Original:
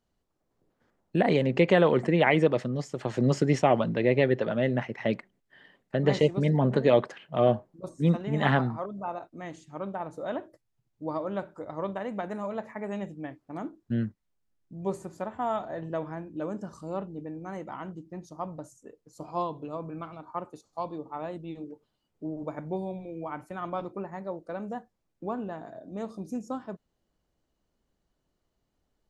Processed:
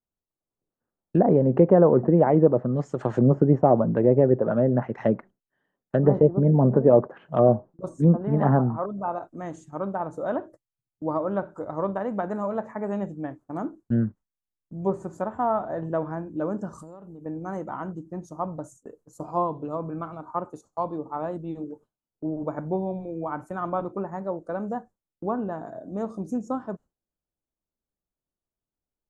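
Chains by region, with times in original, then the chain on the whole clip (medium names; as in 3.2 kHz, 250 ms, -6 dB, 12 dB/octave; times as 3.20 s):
16.78–17.26 s: treble shelf 6.7 kHz +11.5 dB + compression 20:1, threshold -44 dBFS
whole clip: low-pass that closes with the level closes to 790 Hz, closed at -21.5 dBFS; gate with hold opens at -43 dBFS; high-order bell 3.2 kHz -12 dB; trim +5.5 dB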